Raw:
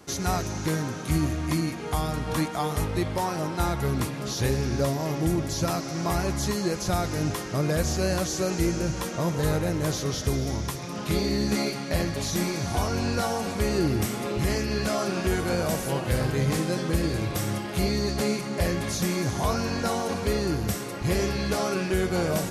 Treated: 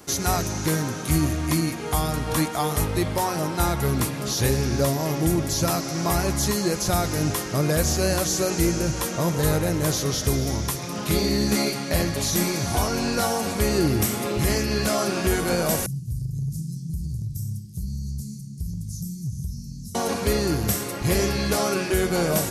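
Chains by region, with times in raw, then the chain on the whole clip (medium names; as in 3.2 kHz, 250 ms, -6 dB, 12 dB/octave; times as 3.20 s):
15.86–19.95 s: elliptic band-stop 150–5400 Hz, stop band 70 dB + resonant high shelf 2 kHz -13 dB, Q 1.5 + compression 3:1, threshold -28 dBFS
whole clip: treble shelf 8.4 kHz +10.5 dB; de-hum 91.9 Hz, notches 2; trim +3 dB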